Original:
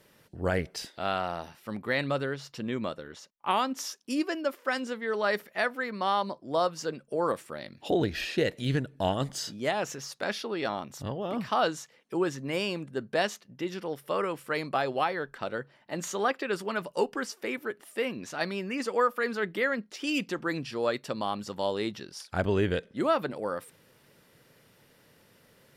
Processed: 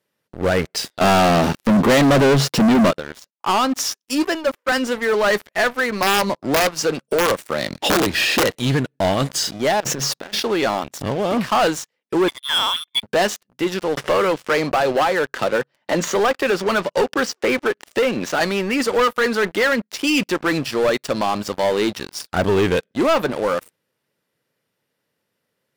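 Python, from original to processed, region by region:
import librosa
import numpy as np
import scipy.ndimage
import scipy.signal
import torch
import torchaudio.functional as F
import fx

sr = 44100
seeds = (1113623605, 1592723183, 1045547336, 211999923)

y = fx.chain(x, sr, fx.peak_eq(hz=200.0, db=12.5, octaves=2.9),
    fx.leveller(passes=3), at=(1.01, 2.91))
y = fx.chain(y, sr, fx.highpass(hz=190.0, slope=12),
    fx.band_widen(depth_pct=100), at=(4.05, 4.72))
y = fx.chain(y, sr, fx.overflow_wrap(gain_db=19.5),
    fx.band_squash(depth_pct=70), at=(6.02, 8.59))
y = fx.chain(y, sr, fx.low_shelf(hz=460.0, db=10.0),
    fx.over_compress(threshold_db=-39.0, ratio=-1.0),
    fx.resample_linear(factor=2), at=(9.8, 10.4))
y = fx.chain(y, sr, fx.highpass(hz=340.0, slope=24),
    fx.freq_invert(carrier_hz=3800), at=(12.28, 13.03))
y = fx.chain(y, sr, fx.lowpass(hz=6800.0, slope=24),
    fx.peak_eq(hz=520.0, db=3.5, octaves=0.28),
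    fx.band_squash(depth_pct=70), at=(13.97, 18.4))
y = scipy.signal.sosfilt(scipy.signal.butter(2, 54.0, 'highpass', fs=sr, output='sos'), y)
y = fx.low_shelf(y, sr, hz=110.0, db=-9.0)
y = fx.leveller(y, sr, passes=5)
y = F.gain(torch.from_numpy(y), -4.0).numpy()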